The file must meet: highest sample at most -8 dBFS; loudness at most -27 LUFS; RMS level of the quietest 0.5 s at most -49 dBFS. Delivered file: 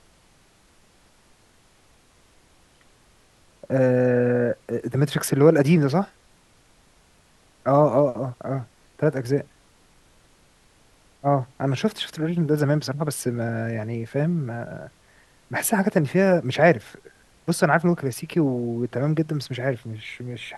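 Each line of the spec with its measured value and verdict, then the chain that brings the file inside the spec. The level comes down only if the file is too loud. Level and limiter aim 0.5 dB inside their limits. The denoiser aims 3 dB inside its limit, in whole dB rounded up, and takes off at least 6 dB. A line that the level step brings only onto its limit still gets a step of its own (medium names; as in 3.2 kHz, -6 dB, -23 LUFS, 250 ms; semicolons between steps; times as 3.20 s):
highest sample -3.5 dBFS: fail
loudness -23.0 LUFS: fail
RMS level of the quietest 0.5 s -58 dBFS: pass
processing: trim -4.5 dB; peak limiter -8.5 dBFS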